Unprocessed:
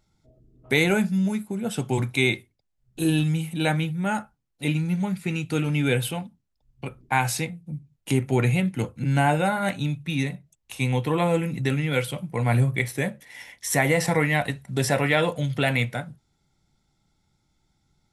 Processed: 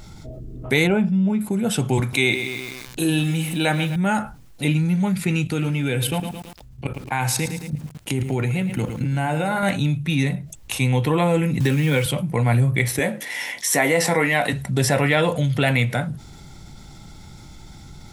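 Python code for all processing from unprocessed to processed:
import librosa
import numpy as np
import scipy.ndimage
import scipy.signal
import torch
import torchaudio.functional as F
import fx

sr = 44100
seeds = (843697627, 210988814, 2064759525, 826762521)

y = fx.chain(x, sr, fx.savgol(points=25),
    fx.peak_eq(hz=1800.0, db=-8.5, octaves=0.86), at=(0.87, 1.41))
y = fx.chain(y, sr, fx.low_shelf(hz=200.0, db=-9.5),
    fx.echo_crushed(ms=127, feedback_pct=55, bits=7, wet_db=-15.0), at=(2.0, 3.96))
y = fx.chain(y, sr, fx.highpass(hz=44.0, slope=12),
    fx.level_steps(step_db=15),
    fx.echo_crushed(ms=110, feedback_pct=35, bits=9, wet_db=-13.0), at=(5.47, 9.63))
y = fx.chain(y, sr, fx.quant_companded(bits=6),
    fx.notch_comb(f0_hz=680.0),
    fx.band_squash(depth_pct=100), at=(11.6, 12.06))
y = fx.chain(y, sr, fx.highpass(hz=240.0, slope=12),
    fx.doubler(ms=18.0, db=-10.5), at=(12.99, 14.53))
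y = fx.low_shelf(y, sr, hz=130.0, db=3.5)
y = fx.env_flatten(y, sr, amount_pct=50)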